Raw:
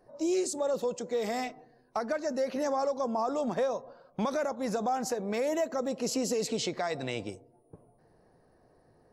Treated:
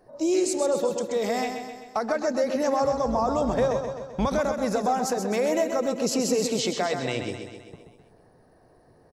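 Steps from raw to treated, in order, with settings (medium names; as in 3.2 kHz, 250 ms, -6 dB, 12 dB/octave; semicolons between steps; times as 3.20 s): 2.82–4.28 s: octave divider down 2 oct, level -5 dB; feedback delay 130 ms, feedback 56%, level -7 dB; trim +5 dB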